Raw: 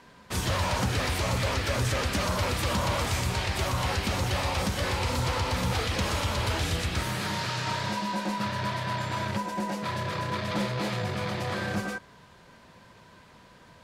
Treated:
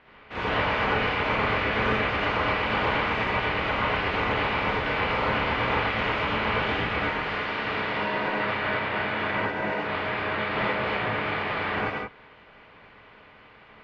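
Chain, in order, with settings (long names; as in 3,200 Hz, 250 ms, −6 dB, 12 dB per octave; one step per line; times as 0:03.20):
ceiling on every frequency bin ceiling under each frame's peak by 19 dB
low-pass filter 2,600 Hz 24 dB per octave
reverb whose tail is shaped and stops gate 110 ms rising, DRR −5.5 dB
level −2 dB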